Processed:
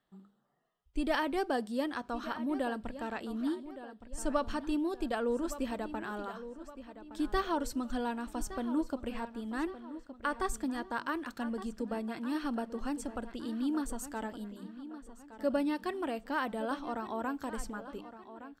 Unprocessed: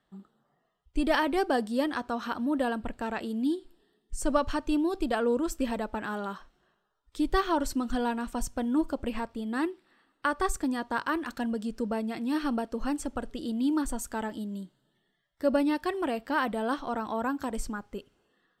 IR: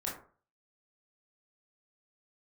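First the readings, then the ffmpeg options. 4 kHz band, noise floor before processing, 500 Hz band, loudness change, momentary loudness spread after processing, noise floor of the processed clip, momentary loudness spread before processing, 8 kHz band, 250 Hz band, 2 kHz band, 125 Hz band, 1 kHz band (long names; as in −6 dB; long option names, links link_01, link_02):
−5.5 dB, −76 dBFS, −5.5 dB, −5.5 dB, 13 LU, −62 dBFS, 9 LU, −5.5 dB, −5.5 dB, −5.5 dB, can't be measured, −5.5 dB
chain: -filter_complex "[0:a]bandreject=frequency=50:width_type=h:width=6,bandreject=frequency=100:width_type=h:width=6,bandreject=frequency=150:width_type=h:width=6,bandreject=frequency=200:width_type=h:width=6,asplit=2[link_01][link_02];[link_02]adelay=1166,lowpass=frequency=4400:poles=1,volume=-13dB,asplit=2[link_03][link_04];[link_04]adelay=1166,lowpass=frequency=4400:poles=1,volume=0.45,asplit=2[link_05][link_06];[link_06]adelay=1166,lowpass=frequency=4400:poles=1,volume=0.45,asplit=2[link_07][link_08];[link_08]adelay=1166,lowpass=frequency=4400:poles=1,volume=0.45[link_09];[link_03][link_05][link_07][link_09]amix=inputs=4:normalize=0[link_10];[link_01][link_10]amix=inputs=2:normalize=0,volume=-5.5dB"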